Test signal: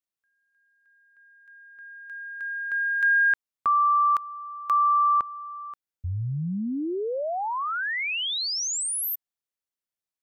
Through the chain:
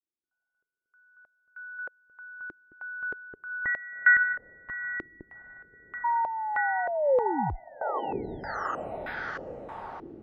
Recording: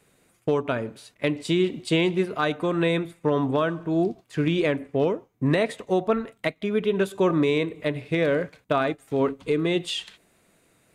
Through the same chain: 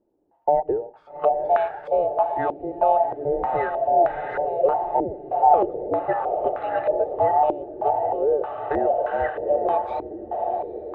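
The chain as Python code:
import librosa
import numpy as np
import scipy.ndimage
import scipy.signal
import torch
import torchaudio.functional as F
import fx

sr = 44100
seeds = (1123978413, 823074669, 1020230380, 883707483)

y = fx.band_invert(x, sr, width_hz=1000)
y = fx.echo_diffused(y, sr, ms=805, feedback_pct=63, wet_db=-7)
y = fx.filter_held_lowpass(y, sr, hz=3.2, low_hz=340.0, high_hz=1500.0)
y = y * 10.0 ** (-4.0 / 20.0)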